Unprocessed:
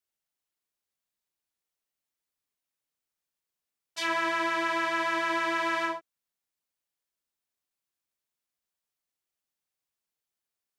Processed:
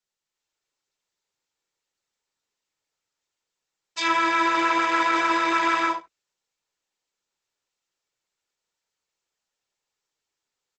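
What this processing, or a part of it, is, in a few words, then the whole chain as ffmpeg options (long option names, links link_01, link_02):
video call: -filter_complex "[0:a]aecho=1:1:2.2:0.64,asplit=3[link_01][link_02][link_03];[link_01]afade=type=out:start_time=4.46:duration=0.02[link_04];[link_02]equalizer=frequency=540:width_type=o:width=0.41:gain=5.5,afade=type=in:start_time=4.46:duration=0.02,afade=type=out:start_time=5.48:duration=0.02[link_05];[link_03]afade=type=in:start_time=5.48:duration=0.02[link_06];[link_04][link_05][link_06]amix=inputs=3:normalize=0,highpass=120,aecho=1:1:71:0.141,dynaudnorm=framelen=230:gausssize=3:maxgain=6dB" -ar 48000 -c:a libopus -b:a 12k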